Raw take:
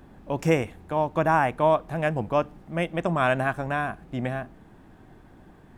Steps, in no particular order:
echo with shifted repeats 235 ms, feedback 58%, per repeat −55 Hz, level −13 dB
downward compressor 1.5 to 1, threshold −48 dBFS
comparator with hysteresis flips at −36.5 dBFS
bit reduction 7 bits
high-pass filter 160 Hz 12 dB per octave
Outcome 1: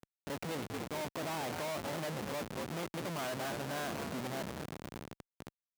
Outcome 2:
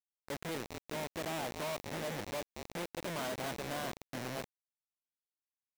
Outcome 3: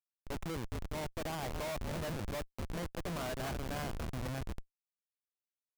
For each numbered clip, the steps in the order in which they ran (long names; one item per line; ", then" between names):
echo with shifted repeats, then downward compressor, then bit reduction, then comparator with hysteresis, then high-pass filter
downward compressor, then echo with shifted repeats, then comparator with hysteresis, then high-pass filter, then bit reduction
echo with shifted repeats, then high-pass filter, then bit reduction, then downward compressor, then comparator with hysteresis